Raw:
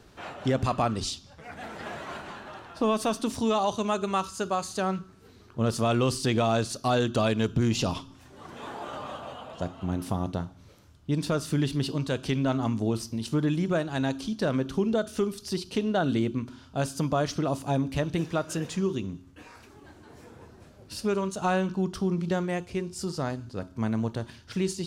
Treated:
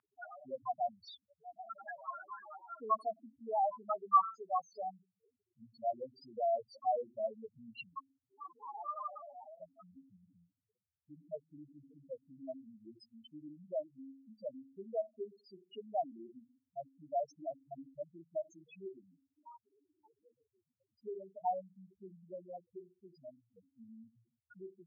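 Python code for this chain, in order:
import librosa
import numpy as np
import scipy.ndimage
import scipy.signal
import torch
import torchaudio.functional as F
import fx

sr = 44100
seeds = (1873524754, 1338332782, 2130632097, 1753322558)

y = fx.env_lowpass(x, sr, base_hz=1300.0, full_db=-25.0)
y = fx.spec_topn(y, sr, count=2)
y = fx.ladder_bandpass(y, sr, hz=1500.0, resonance_pct=35)
y = y * 10.0 ** (16.5 / 20.0)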